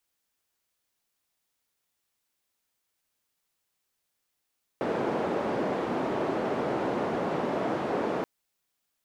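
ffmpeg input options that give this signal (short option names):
-f lavfi -i "anoisesrc=c=white:d=3.43:r=44100:seed=1,highpass=f=230,lowpass=f=560,volume=-6.6dB"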